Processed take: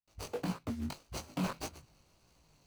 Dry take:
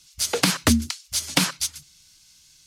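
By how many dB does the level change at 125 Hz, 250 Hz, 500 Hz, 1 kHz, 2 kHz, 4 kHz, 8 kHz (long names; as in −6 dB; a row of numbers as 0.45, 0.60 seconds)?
−12.0, −13.5, −11.5, −13.0, −20.5, −23.5, −24.5 decibels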